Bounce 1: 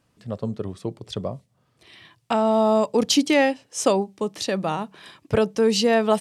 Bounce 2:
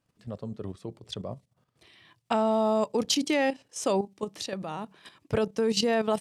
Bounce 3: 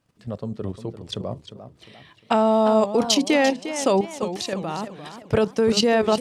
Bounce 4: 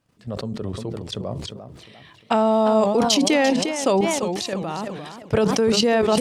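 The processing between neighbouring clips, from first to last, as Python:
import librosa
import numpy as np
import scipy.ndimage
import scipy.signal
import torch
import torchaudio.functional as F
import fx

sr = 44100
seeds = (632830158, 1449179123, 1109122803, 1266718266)

y1 = fx.level_steps(x, sr, step_db=11)
y1 = y1 * 10.0 ** (-2.0 / 20.0)
y2 = fx.high_shelf(y1, sr, hz=8800.0, db=-4.0)
y2 = fx.echo_warbled(y2, sr, ms=348, feedback_pct=41, rate_hz=2.8, cents=158, wet_db=-11.5)
y2 = y2 * 10.0 ** (6.5 / 20.0)
y3 = fx.sustainer(y2, sr, db_per_s=36.0)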